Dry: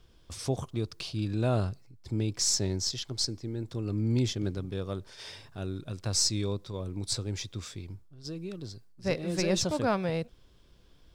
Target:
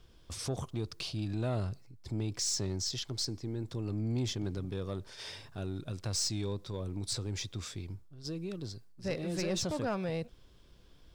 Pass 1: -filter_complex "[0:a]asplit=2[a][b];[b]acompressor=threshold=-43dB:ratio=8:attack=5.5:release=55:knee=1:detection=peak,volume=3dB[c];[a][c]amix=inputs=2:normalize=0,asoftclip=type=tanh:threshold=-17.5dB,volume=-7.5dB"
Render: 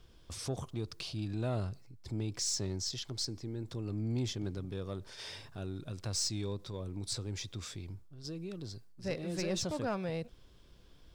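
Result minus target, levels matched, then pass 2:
compressor: peak gain reduction +7.5 dB
-filter_complex "[0:a]asplit=2[a][b];[b]acompressor=threshold=-34.5dB:ratio=8:attack=5.5:release=55:knee=1:detection=peak,volume=3dB[c];[a][c]amix=inputs=2:normalize=0,asoftclip=type=tanh:threshold=-17.5dB,volume=-7.5dB"

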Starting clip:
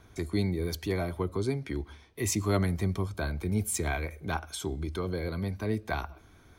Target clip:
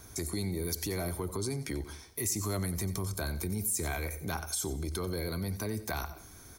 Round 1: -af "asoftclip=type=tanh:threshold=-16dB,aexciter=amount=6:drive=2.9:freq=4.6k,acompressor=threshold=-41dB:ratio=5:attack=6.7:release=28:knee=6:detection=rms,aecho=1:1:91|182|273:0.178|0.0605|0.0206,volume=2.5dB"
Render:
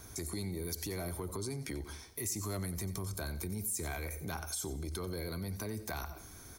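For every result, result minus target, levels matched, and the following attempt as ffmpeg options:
soft clip: distortion +18 dB; compressor: peak gain reduction +4.5 dB
-af "asoftclip=type=tanh:threshold=-6.5dB,aexciter=amount=6:drive=2.9:freq=4.6k,acompressor=threshold=-41dB:ratio=5:attack=6.7:release=28:knee=6:detection=rms,aecho=1:1:91|182|273:0.178|0.0605|0.0206,volume=2.5dB"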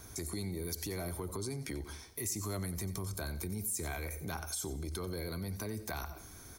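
compressor: peak gain reduction +5 dB
-af "asoftclip=type=tanh:threshold=-6.5dB,aexciter=amount=6:drive=2.9:freq=4.6k,acompressor=threshold=-35dB:ratio=5:attack=6.7:release=28:knee=6:detection=rms,aecho=1:1:91|182|273:0.178|0.0605|0.0206,volume=2.5dB"

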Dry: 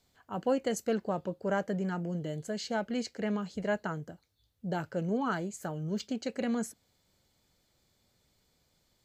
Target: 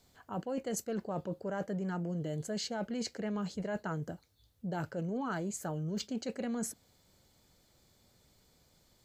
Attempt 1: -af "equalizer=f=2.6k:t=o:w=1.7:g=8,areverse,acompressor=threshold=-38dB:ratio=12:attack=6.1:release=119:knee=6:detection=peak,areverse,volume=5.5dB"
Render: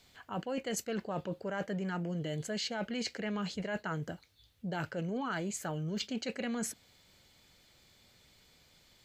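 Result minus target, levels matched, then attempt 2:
2000 Hz band +4.5 dB
-af "equalizer=f=2.6k:t=o:w=1.7:g=-3,areverse,acompressor=threshold=-38dB:ratio=12:attack=6.1:release=119:knee=6:detection=peak,areverse,volume=5.5dB"

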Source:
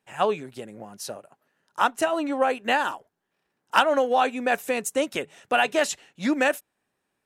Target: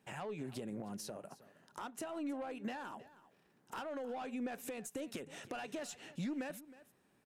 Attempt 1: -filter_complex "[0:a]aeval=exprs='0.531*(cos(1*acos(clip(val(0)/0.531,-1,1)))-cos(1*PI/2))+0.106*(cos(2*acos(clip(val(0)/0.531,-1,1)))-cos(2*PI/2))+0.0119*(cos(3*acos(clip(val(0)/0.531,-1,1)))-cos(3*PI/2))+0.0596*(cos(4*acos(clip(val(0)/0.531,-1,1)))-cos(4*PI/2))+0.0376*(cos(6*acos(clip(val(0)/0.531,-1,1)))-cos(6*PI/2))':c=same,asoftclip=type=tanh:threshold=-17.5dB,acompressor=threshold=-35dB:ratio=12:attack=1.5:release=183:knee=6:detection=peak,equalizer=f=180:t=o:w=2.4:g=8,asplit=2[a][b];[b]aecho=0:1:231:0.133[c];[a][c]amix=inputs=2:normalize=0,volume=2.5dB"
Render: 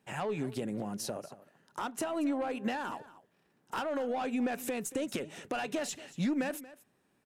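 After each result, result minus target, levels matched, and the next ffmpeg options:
compressor: peak gain reduction -8.5 dB; echo 84 ms early
-filter_complex "[0:a]aeval=exprs='0.531*(cos(1*acos(clip(val(0)/0.531,-1,1)))-cos(1*PI/2))+0.106*(cos(2*acos(clip(val(0)/0.531,-1,1)))-cos(2*PI/2))+0.0119*(cos(3*acos(clip(val(0)/0.531,-1,1)))-cos(3*PI/2))+0.0596*(cos(4*acos(clip(val(0)/0.531,-1,1)))-cos(4*PI/2))+0.0376*(cos(6*acos(clip(val(0)/0.531,-1,1)))-cos(6*PI/2))':c=same,asoftclip=type=tanh:threshold=-17.5dB,acompressor=threshold=-44.5dB:ratio=12:attack=1.5:release=183:knee=6:detection=peak,equalizer=f=180:t=o:w=2.4:g=8,asplit=2[a][b];[b]aecho=0:1:231:0.133[c];[a][c]amix=inputs=2:normalize=0,volume=2.5dB"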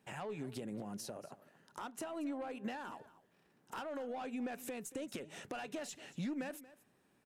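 echo 84 ms early
-filter_complex "[0:a]aeval=exprs='0.531*(cos(1*acos(clip(val(0)/0.531,-1,1)))-cos(1*PI/2))+0.106*(cos(2*acos(clip(val(0)/0.531,-1,1)))-cos(2*PI/2))+0.0119*(cos(3*acos(clip(val(0)/0.531,-1,1)))-cos(3*PI/2))+0.0596*(cos(4*acos(clip(val(0)/0.531,-1,1)))-cos(4*PI/2))+0.0376*(cos(6*acos(clip(val(0)/0.531,-1,1)))-cos(6*PI/2))':c=same,asoftclip=type=tanh:threshold=-17.5dB,acompressor=threshold=-44.5dB:ratio=12:attack=1.5:release=183:knee=6:detection=peak,equalizer=f=180:t=o:w=2.4:g=8,asplit=2[a][b];[b]aecho=0:1:315:0.133[c];[a][c]amix=inputs=2:normalize=0,volume=2.5dB"

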